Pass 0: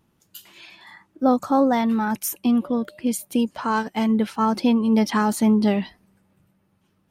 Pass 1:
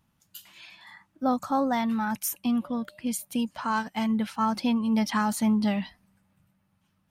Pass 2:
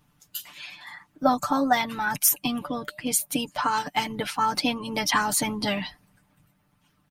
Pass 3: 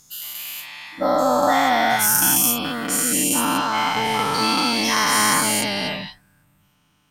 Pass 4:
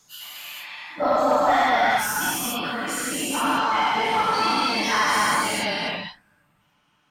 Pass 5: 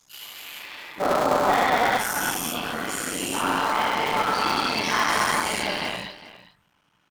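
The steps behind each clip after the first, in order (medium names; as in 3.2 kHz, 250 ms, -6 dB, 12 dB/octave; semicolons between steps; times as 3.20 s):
peaking EQ 390 Hz -13.5 dB 0.78 oct; trim -3 dB
harmonic-percussive split harmonic -10 dB; comb 6.8 ms, depth 70%; trim +9 dB
every event in the spectrogram widened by 480 ms; trim -4 dB
phase randomisation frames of 50 ms; overdrive pedal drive 13 dB, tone 1.9 kHz, clips at -3.5 dBFS; trim -4.5 dB
cycle switcher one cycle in 3, muted; delay 406 ms -16 dB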